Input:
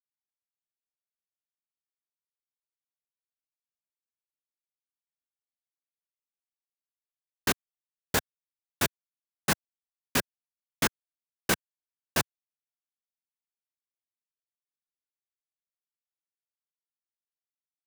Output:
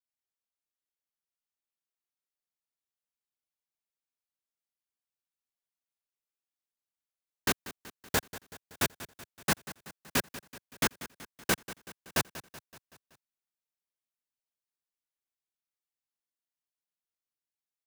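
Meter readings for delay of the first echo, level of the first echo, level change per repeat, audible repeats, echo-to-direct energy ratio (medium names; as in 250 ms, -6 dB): 189 ms, -15.5 dB, -5.0 dB, 4, -14.0 dB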